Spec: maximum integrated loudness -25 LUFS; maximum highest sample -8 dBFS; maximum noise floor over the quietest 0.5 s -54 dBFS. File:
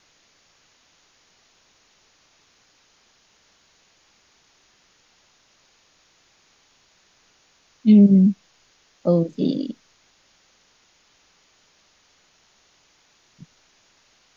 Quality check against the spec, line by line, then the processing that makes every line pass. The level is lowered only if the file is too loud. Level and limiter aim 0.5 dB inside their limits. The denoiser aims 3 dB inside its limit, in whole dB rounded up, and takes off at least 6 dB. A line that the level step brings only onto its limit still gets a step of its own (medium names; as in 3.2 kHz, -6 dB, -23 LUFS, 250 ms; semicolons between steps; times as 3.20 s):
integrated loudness -18.0 LUFS: fail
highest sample -5.5 dBFS: fail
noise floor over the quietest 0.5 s -61 dBFS: pass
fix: trim -7.5 dB